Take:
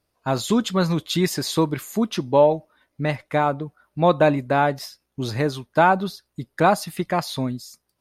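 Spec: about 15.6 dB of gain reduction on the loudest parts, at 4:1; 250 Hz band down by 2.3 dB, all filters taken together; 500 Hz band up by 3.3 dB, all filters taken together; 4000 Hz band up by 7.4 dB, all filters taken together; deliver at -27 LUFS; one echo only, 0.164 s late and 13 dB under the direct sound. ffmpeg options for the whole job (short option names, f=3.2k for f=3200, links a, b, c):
-af "equalizer=f=250:t=o:g=-5,equalizer=f=500:t=o:g=5,equalizer=f=4k:t=o:g=8.5,acompressor=threshold=-28dB:ratio=4,aecho=1:1:164:0.224,volume=4dB"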